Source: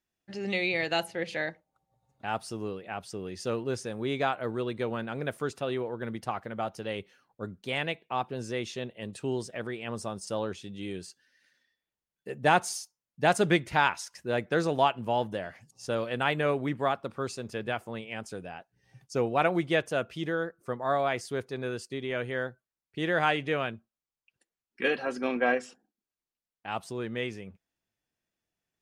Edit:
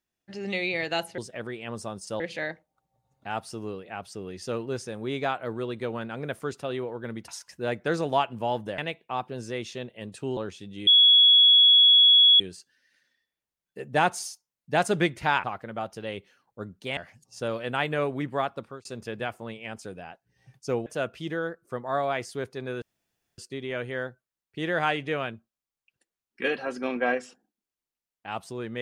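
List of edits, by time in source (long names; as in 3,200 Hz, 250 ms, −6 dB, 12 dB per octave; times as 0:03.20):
0:06.26–0:07.79: swap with 0:13.94–0:15.44
0:09.38–0:10.40: move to 0:01.18
0:10.90: insert tone 3,360 Hz −13 dBFS 1.53 s
0:17.06–0:17.32: fade out
0:19.33–0:19.82: remove
0:21.78: splice in room tone 0.56 s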